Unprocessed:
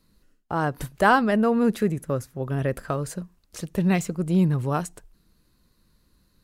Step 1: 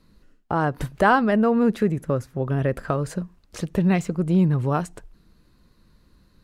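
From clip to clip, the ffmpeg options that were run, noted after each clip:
ffmpeg -i in.wav -filter_complex "[0:a]lowpass=frequency=3100:poles=1,asplit=2[link_01][link_02];[link_02]acompressor=threshold=-30dB:ratio=6,volume=3dB[link_03];[link_01][link_03]amix=inputs=2:normalize=0,volume=-1dB" out.wav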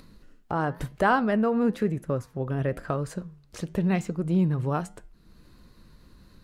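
ffmpeg -i in.wav -af "acompressor=mode=upward:threshold=-37dB:ratio=2.5,flanger=delay=7.2:depth=3.4:regen=-88:speed=1:shape=sinusoidal" out.wav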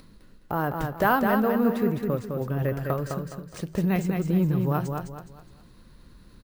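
ffmpeg -i in.wav -filter_complex "[0:a]acrusher=samples=3:mix=1:aa=0.000001,asplit=2[link_01][link_02];[link_02]aecho=0:1:208|416|624|832:0.562|0.191|0.065|0.0221[link_03];[link_01][link_03]amix=inputs=2:normalize=0" out.wav

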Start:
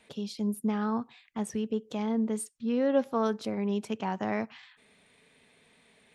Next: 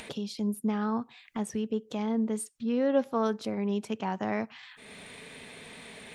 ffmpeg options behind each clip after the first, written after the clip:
ffmpeg -i in.wav -af "acompressor=mode=upward:threshold=-32dB:ratio=2.5" out.wav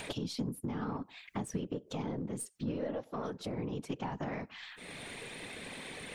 ffmpeg -i in.wav -af "acompressor=threshold=-35dB:ratio=12,afftfilt=real='hypot(re,im)*cos(2*PI*random(0))':imag='hypot(re,im)*sin(2*PI*random(1))':win_size=512:overlap=0.75,aeval=exprs='0.0251*(cos(1*acos(clip(val(0)/0.0251,-1,1)))-cos(1*PI/2))+0.000501*(cos(8*acos(clip(val(0)/0.0251,-1,1)))-cos(8*PI/2))':channel_layout=same,volume=7.5dB" out.wav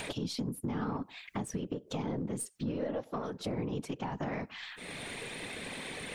ffmpeg -i in.wav -af "alimiter=level_in=5dB:limit=-24dB:level=0:latency=1:release=199,volume=-5dB,volume=3.5dB" out.wav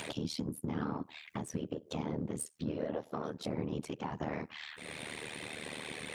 ffmpeg -i in.wav -af "tremolo=f=76:d=0.857,highpass=71,volume=2dB" out.wav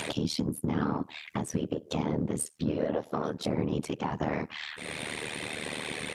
ffmpeg -i in.wav -af "aresample=32000,aresample=44100,volume=7dB" out.wav

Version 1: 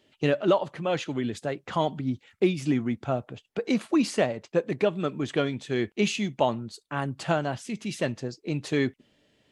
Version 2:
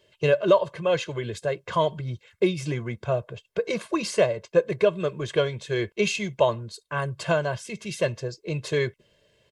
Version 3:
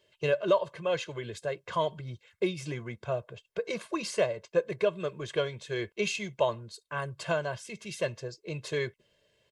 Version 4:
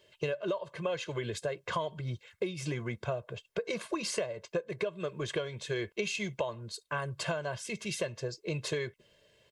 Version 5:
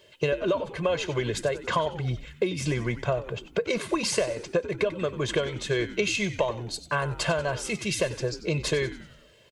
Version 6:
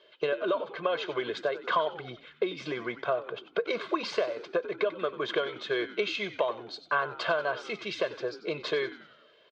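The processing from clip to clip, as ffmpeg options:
ffmpeg -i in.wav -af "aecho=1:1:1.9:0.93" out.wav
ffmpeg -i in.wav -af "lowshelf=frequency=380:gain=-4,volume=-5dB" out.wav
ffmpeg -i in.wav -af "acompressor=threshold=-34dB:ratio=16,volume=4.5dB" out.wav
ffmpeg -i in.wav -filter_complex "[0:a]asplit=6[link_01][link_02][link_03][link_04][link_05][link_06];[link_02]adelay=93,afreqshift=-93,volume=-14dB[link_07];[link_03]adelay=186,afreqshift=-186,volume=-19.8dB[link_08];[link_04]adelay=279,afreqshift=-279,volume=-25.7dB[link_09];[link_05]adelay=372,afreqshift=-372,volume=-31.5dB[link_10];[link_06]adelay=465,afreqshift=-465,volume=-37.4dB[link_11];[link_01][link_07][link_08][link_09][link_10][link_11]amix=inputs=6:normalize=0,volume=7.5dB" out.wav
ffmpeg -i in.wav -af "highpass=500,equalizer=frequency=550:width_type=q:width=4:gain=-5,equalizer=frequency=900:width_type=q:width=4:gain=-7,equalizer=frequency=1300:width_type=q:width=4:gain=3,equalizer=frequency=1900:width_type=q:width=4:gain=-9,equalizer=frequency=2700:width_type=q:width=4:gain=-9,lowpass=frequency=3500:width=0.5412,lowpass=frequency=3500:width=1.3066,volume=3.5dB" out.wav

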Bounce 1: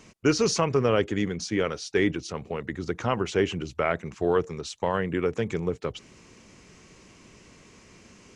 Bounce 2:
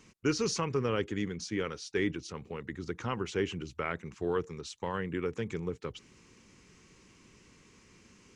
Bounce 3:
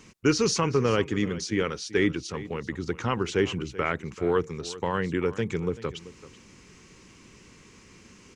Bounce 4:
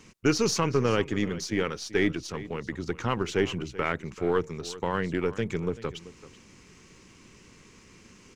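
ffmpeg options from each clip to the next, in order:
ffmpeg -i in.wav -af "equalizer=frequency=650:width_type=o:width=0.46:gain=-9.5,volume=-6.5dB" out.wav
ffmpeg -i in.wav -af "aecho=1:1:385:0.141,volume=7dB" out.wav
ffmpeg -i in.wav -af "aeval=exprs='if(lt(val(0),0),0.708*val(0),val(0))':channel_layout=same" out.wav

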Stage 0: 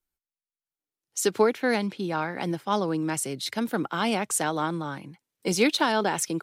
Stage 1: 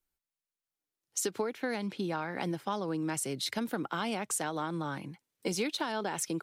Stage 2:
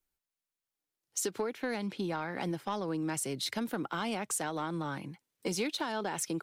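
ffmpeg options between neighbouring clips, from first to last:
ffmpeg -i in.wav -af "acompressor=threshold=-30dB:ratio=6" out.wav
ffmpeg -i in.wav -af "asoftclip=type=tanh:threshold=-22dB" out.wav

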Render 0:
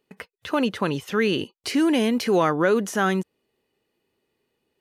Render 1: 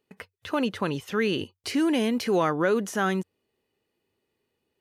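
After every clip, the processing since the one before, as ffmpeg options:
ffmpeg -i in.wav -af "equalizer=frequency=93:width_type=o:width=0.28:gain=9,volume=-3.5dB" out.wav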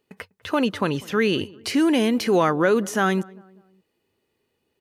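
ffmpeg -i in.wav -filter_complex "[0:a]asplit=2[link_01][link_02];[link_02]adelay=198,lowpass=frequency=1200:poles=1,volume=-22dB,asplit=2[link_03][link_04];[link_04]adelay=198,lowpass=frequency=1200:poles=1,volume=0.45,asplit=2[link_05][link_06];[link_06]adelay=198,lowpass=frequency=1200:poles=1,volume=0.45[link_07];[link_01][link_03][link_05][link_07]amix=inputs=4:normalize=0,volume=4.5dB" out.wav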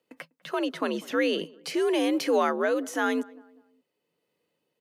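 ffmpeg -i in.wav -af "afreqshift=70,tremolo=f=0.9:d=0.3,volume=-4dB" out.wav

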